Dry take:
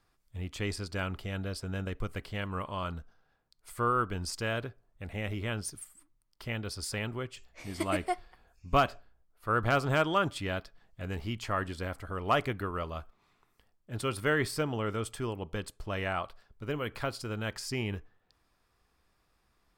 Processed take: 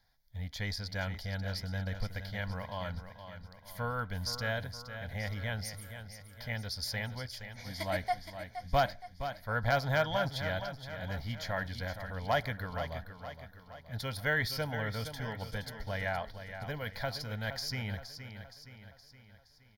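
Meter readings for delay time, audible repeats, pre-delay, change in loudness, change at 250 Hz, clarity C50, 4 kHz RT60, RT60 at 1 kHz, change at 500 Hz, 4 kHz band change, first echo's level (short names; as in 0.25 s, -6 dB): 0.469 s, 5, none, -2.5 dB, -6.0 dB, none, none, none, -3.0 dB, +1.0 dB, -10.0 dB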